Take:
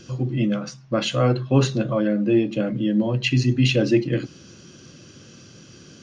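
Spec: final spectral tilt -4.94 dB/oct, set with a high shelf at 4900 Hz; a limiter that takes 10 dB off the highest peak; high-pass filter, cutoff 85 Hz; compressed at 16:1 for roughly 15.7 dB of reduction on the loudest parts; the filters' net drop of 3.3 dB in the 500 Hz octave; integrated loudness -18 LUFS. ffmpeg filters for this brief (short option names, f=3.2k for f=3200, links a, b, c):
-af "highpass=85,equalizer=f=500:t=o:g=-4.5,highshelf=f=4.9k:g=8,acompressor=threshold=-30dB:ratio=16,volume=21dB,alimiter=limit=-9dB:level=0:latency=1"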